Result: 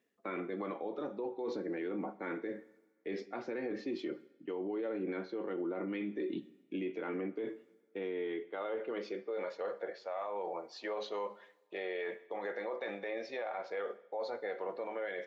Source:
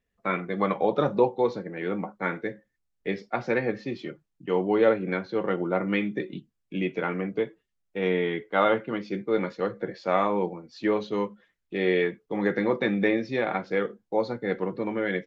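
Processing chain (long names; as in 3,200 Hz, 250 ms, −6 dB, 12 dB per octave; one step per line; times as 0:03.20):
high-pass filter sweep 300 Hz → 610 Hz, 0:07.98–0:09.76
reversed playback
downward compressor 5 to 1, threshold −33 dBFS, peak gain reduction 19 dB
reversed playback
coupled-rooms reverb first 0.75 s, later 2.1 s, from −18 dB, DRR 17.5 dB
brickwall limiter −32.5 dBFS, peak gain reduction 11 dB
level +2.5 dB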